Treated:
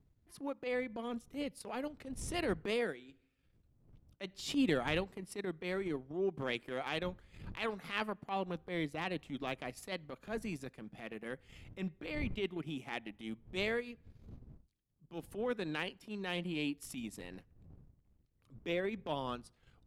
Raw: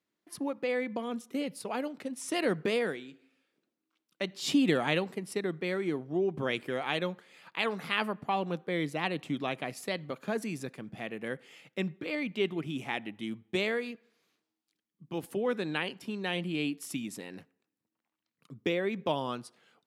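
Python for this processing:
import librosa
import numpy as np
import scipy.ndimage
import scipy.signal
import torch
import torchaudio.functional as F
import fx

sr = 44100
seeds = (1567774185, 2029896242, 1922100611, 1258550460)

y = fx.dmg_wind(x, sr, seeds[0], corner_hz=110.0, level_db=-49.0)
y = fx.transient(y, sr, attack_db=-11, sustain_db=-7)
y = y * librosa.db_to_amplitude(-3.5)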